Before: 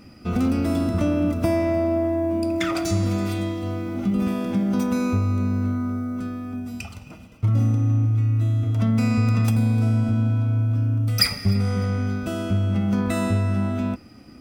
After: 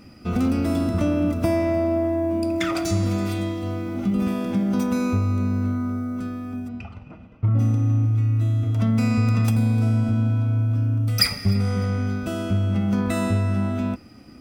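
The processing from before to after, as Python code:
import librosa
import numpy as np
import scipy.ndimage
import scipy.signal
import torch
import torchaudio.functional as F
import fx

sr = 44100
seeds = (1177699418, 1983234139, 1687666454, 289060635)

y = fx.lowpass(x, sr, hz=1900.0, slope=12, at=(6.67, 7.58), fade=0.02)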